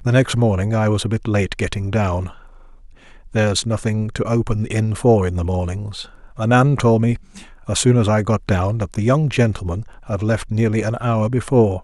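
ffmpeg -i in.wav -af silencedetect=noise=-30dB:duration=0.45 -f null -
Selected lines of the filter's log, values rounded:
silence_start: 2.31
silence_end: 3.35 | silence_duration: 1.03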